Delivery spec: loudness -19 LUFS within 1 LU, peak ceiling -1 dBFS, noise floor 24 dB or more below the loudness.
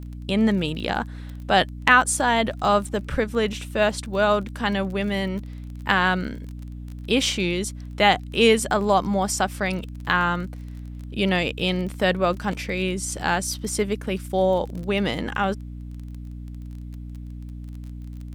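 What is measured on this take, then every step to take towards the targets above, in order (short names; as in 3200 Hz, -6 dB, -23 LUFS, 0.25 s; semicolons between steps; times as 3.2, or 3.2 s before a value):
ticks 26/s; hum 60 Hz; harmonics up to 300 Hz; hum level -33 dBFS; loudness -23.0 LUFS; peak -2.5 dBFS; loudness target -19.0 LUFS
-> de-click; notches 60/120/180/240/300 Hz; gain +4 dB; limiter -1 dBFS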